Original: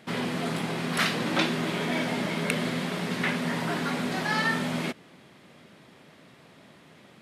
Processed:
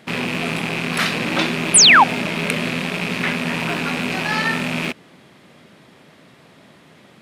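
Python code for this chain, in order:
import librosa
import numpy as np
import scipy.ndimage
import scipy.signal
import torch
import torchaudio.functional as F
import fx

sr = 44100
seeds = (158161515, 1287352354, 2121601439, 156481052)

y = fx.rattle_buzz(x, sr, strikes_db=-43.0, level_db=-18.0)
y = fx.spec_paint(y, sr, seeds[0], shape='fall', start_s=1.74, length_s=0.3, low_hz=720.0, high_hz=11000.0, level_db=-14.0)
y = F.gain(torch.from_numpy(y), 5.0).numpy()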